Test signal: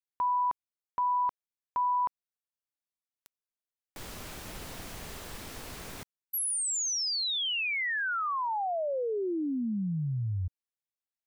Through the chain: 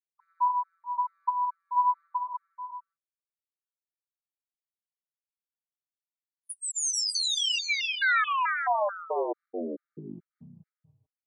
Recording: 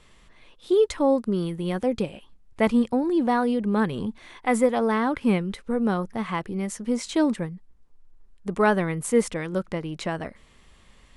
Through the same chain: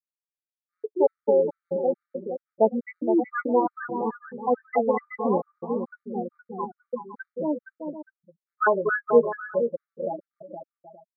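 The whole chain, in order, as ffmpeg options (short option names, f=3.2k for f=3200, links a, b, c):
-filter_complex "[0:a]afftfilt=real='re*gte(hypot(re,im),0.251)':imag='im*gte(hypot(re,im),0.251)':win_size=1024:overlap=0.75,highpass=470,flanger=delay=4.7:depth=8.5:regen=16:speed=0.39:shape=sinusoidal,asplit=2[a][b];[b]aecho=0:1:260|468|634.4|767.5|874:0.631|0.398|0.251|0.158|0.1[c];[a][c]amix=inputs=2:normalize=0,aresample=32000,aresample=44100,afftfilt=real='re*gt(sin(2*PI*2.3*pts/sr)*(1-2*mod(floor(b*sr/1024/1200),2)),0)':imag='im*gt(sin(2*PI*2.3*pts/sr)*(1-2*mod(floor(b*sr/1024/1200),2)),0)':win_size=1024:overlap=0.75,volume=8.5dB"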